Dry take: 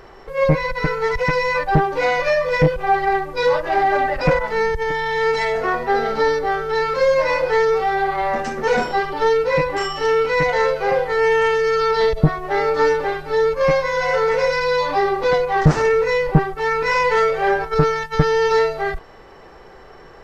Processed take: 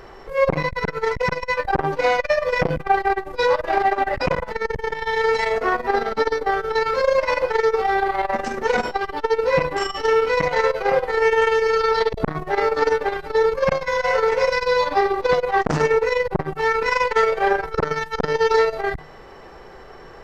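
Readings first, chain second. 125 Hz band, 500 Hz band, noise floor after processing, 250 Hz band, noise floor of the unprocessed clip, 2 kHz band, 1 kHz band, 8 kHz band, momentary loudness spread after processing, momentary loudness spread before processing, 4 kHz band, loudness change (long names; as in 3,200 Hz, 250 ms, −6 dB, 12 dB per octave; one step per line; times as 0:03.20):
−9.0 dB, −2.0 dB, −41 dBFS, −5.0 dB, −43 dBFS, −2.0 dB, −1.5 dB, can't be measured, 6 LU, 4 LU, −1.5 dB, −2.0 dB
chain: hum removal 152.6 Hz, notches 27
saturating transformer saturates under 740 Hz
level +1.5 dB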